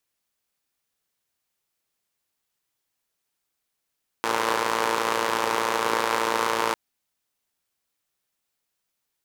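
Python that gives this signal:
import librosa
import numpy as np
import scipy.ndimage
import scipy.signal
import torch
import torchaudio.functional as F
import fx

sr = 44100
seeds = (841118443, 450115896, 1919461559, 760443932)

y = fx.engine_four(sr, seeds[0], length_s=2.5, rpm=3400, resonances_hz=(490.0, 940.0))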